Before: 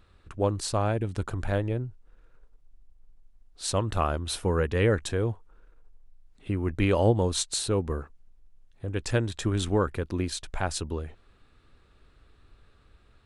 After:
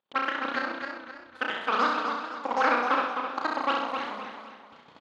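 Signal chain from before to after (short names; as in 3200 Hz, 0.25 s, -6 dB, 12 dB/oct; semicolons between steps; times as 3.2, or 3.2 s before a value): recorder AGC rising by 5.5 dB/s; soft clip -23.5 dBFS, distortion -11 dB; level quantiser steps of 14 dB; gate with hold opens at -44 dBFS; wide varispeed 2.65×; BPF 520–3800 Hz; air absorption 110 m; doubler 33 ms -5 dB; feedback echo 66 ms, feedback 54%, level -4 dB; warbling echo 0.26 s, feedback 39%, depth 87 cents, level -6 dB; gain +7 dB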